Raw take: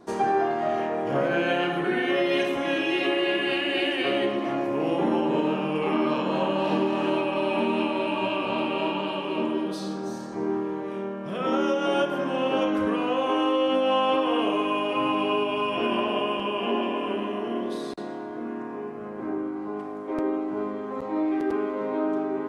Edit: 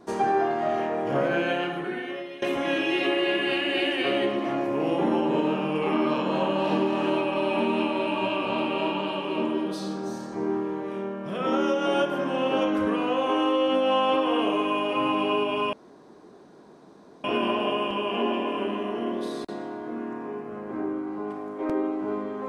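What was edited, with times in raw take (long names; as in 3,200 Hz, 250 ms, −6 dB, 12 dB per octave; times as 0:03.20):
0:01.28–0:02.42: fade out, to −21 dB
0:15.73: splice in room tone 1.51 s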